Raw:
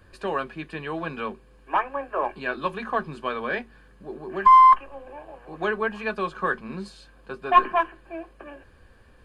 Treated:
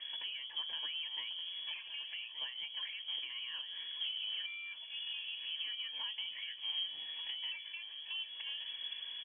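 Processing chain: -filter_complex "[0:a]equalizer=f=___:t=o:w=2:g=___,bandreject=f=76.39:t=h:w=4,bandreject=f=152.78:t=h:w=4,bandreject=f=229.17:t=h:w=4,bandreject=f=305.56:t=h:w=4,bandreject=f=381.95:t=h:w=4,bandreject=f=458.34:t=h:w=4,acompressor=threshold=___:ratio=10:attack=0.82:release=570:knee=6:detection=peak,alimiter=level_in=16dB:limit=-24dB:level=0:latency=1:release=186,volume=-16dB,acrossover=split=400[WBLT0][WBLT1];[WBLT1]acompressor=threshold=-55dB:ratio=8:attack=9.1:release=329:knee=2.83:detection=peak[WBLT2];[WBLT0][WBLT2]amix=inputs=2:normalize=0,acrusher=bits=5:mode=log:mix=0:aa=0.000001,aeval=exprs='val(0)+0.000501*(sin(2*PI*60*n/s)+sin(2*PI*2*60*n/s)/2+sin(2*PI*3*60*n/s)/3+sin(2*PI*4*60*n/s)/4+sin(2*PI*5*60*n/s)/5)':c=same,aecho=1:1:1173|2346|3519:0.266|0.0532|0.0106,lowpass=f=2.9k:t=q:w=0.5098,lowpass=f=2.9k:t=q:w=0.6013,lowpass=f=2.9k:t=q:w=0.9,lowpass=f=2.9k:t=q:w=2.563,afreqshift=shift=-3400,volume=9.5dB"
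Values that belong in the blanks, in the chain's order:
2.1k, -9.5, -36dB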